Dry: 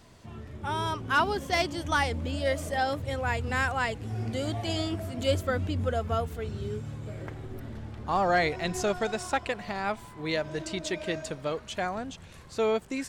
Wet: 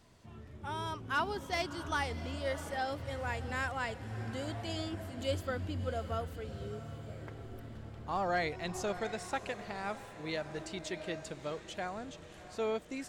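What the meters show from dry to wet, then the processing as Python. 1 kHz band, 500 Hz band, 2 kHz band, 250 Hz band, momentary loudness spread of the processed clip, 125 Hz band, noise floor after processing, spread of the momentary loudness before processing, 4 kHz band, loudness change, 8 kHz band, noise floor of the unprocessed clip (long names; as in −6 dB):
−8.0 dB, −8.0 dB, −8.0 dB, −8.0 dB, 12 LU, −8.0 dB, −52 dBFS, 13 LU, −7.5 dB, −8.0 dB, −8.0 dB, −49 dBFS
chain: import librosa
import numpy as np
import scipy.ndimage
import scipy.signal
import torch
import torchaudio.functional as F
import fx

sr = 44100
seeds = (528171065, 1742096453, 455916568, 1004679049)

y = fx.echo_diffused(x, sr, ms=662, feedback_pct=57, wet_db=-14.0)
y = F.gain(torch.from_numpy(y), -8.0).numpy()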